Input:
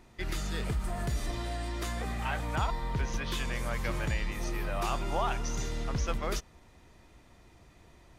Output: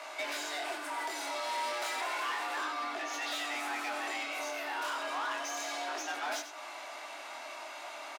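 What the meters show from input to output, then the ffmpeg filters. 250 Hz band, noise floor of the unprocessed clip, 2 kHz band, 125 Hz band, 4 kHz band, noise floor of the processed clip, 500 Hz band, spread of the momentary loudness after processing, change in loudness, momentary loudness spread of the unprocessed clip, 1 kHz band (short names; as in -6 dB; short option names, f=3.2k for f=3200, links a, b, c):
-9.0 dB, -58 dBFS, +3.5 dB, under -40 dB, +3.0 dB, -45 dBFS, -2.0 dB, 9 LU, -2.0 dB, 4 LU, +2.0 dB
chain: -filter_complex "[0:a]flanger=delay=18.5:depth=7.7:speed=0.32,acompressor=threshold=-43dB:ratio=8,lowshelf=f=310:t=q:w=3:g=-7,asplit=2[a][b];[b]highpass=f=720:p=1,volume=23dB,asoftclip=type=tanh:threshold=-34.5dB[c];[a][c]amix=inputs=2:normalize=0,lowpass=f=5.5k:p=1,volume=-6dB,asplit=2[d][e];[e]adelay=93.29,volume=-9dB,highshelf=f=4k:g=-2.1[f];[d][f]amix=inputs=2:normalize=0,afreqshift=250,volume=5.5dB"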